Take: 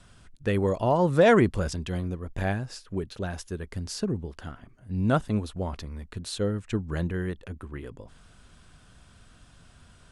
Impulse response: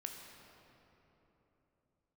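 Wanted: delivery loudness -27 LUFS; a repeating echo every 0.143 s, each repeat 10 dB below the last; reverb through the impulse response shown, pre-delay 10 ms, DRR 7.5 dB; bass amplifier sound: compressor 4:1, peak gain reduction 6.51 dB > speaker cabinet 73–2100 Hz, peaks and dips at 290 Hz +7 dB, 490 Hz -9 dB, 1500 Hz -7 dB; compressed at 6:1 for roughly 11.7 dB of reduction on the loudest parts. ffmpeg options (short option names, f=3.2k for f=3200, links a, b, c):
-filter_complex "[0:a]acompressor=threshold=-27dB:ratio=6,aecho=1:1:143|286|429|572:0.316|0.101|0.0324|0.0104,asplit=2[a][b];[1:a]atrim=start_sample=2205,adelay=10[c];[b][c]afir=irnorm=-1:irlink=0,volume=-5dB[d];[a][d]amix=inputs=2:normalize=0,acompressor=threshold=-30dB:ratio=4,highpass=f=73:w=0.5412,highpass=f=73:w=1.3066,equalizer=f=290:t=q:w=4:g=7,equalizer=f=490:t=q:w=4:g=-9,equalizer=f=1.5k:t=q:w=4:g=-7,lowpass=f=2.1k:w=0.5412,lowpass=f=2.1k:w=1.3066,volume=9.5dB"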